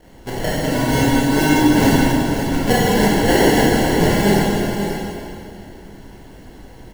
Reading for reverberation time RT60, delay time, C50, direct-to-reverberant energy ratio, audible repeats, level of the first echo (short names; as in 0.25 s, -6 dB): 2.6 s, 0.54 s, -3.5 dB, -8.0 dB, 1, -8.5 dB